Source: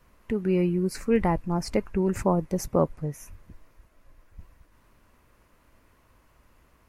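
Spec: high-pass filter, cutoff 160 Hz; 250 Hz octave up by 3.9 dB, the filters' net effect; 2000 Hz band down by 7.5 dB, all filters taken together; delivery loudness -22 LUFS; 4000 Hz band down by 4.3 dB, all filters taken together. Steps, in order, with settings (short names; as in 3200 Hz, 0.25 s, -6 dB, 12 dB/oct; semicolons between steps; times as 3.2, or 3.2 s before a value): HPF 160 Hz; bell 250 Hz +8 dB; bell 2000 Hz -8 dB; bell 4000 Hz -4.5 dB; gain +2 dB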